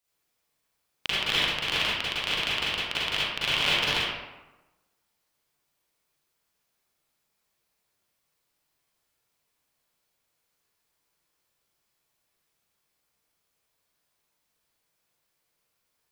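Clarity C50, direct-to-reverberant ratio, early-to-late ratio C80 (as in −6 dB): −5.0 dB, −9.0 dB, 0.0 dB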